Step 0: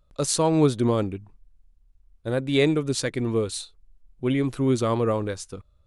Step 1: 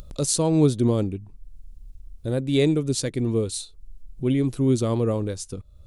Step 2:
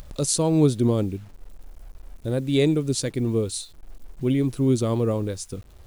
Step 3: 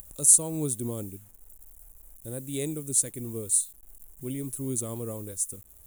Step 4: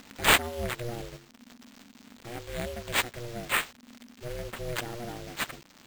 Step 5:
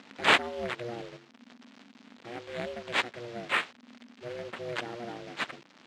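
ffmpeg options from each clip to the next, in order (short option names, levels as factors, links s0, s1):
-af "equalizer=f=1400:w=0.5:g=-11.5,acompressor=mode=upward:threshold=0.0316:ratio=2.5,volume=1.5"
-af "acrusher=bits=8:mix=0:aa=0.000001"
-af "aexciter=amount=15.7:drive=5.3:freq=7100,volume=0.237"
-af "aeval=exprs='val(0)*sin(2*PI*240*n/s)':c=same,acrusher=samples=4:mix=1:aa=0.000001"
-af "highpass=190,lowpass=4000"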